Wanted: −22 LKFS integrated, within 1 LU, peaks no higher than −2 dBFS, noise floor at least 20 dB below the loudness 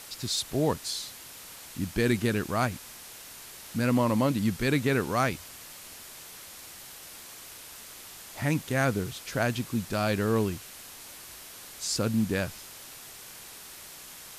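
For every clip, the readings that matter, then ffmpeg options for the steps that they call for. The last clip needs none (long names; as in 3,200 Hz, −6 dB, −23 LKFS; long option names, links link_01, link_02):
background noise floor −46 dBFS; target noise floor −49 dBFS; integrated loudness −28.5 LKFS; sample peak −12.5 dBFS; target loudness −22.0 LKFS
→ -af "afftdn=noise_reduction=6:noise_floor=-46"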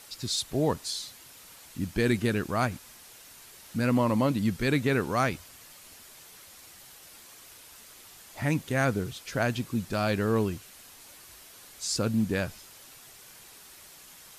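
background noise floor −51 dBFS; integrated loudness −28.5 LKFS; sample peak −13.0 dBFS; target loudness −22.0 LKFS
→ -af "volume=6.5dB"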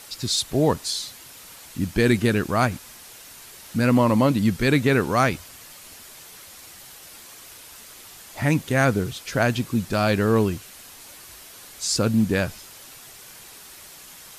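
integrated loudness −22.0 LKFS; sample peak −6.5 dBFS; background noise floor −45 dBFS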